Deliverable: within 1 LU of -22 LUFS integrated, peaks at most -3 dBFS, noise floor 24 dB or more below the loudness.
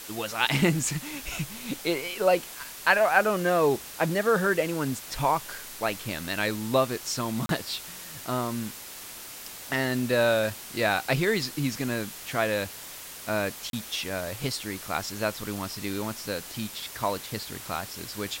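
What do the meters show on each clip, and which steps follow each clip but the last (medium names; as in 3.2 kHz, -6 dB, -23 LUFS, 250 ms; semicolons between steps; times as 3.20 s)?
dropouts 2; longest dropout 32 ms; noise floor -42 dBFS; noise floor target -52 dBFS; loudness -28.0 LUFS; peak level -6.0 dBFS; loudness target -22.0 LUFS
-> interpolate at 7.46/13.70 s, 32 ms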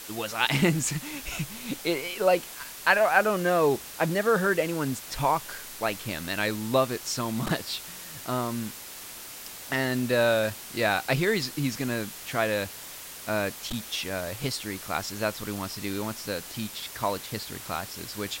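dropouts 0; noise floor -42 dBFS; noise floor target -52 dBFS
-> noise reduction 10 dB, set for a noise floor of -42 dBFS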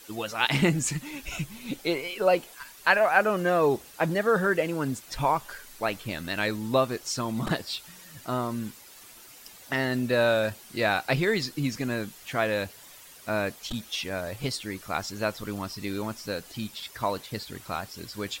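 noise floor -50 dBFS; noise floor target -52 dBFS
-> noise reduction 6 dB, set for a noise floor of -50 dBFS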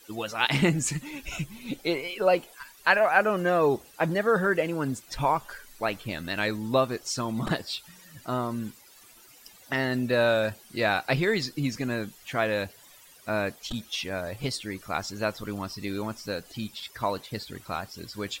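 noise floor -54 dBFS; loudness -28.0 LUFS; peak level -6.0 dBFS; loudness target -22.0 LUFS
-> trim +6 dB; peak limiter -3 dBFS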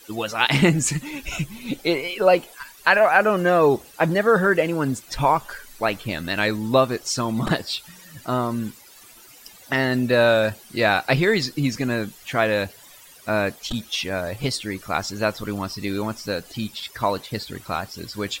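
loudness -22.5 LUFS; peak level -3.0 dBFS; noise floor -48 dBFS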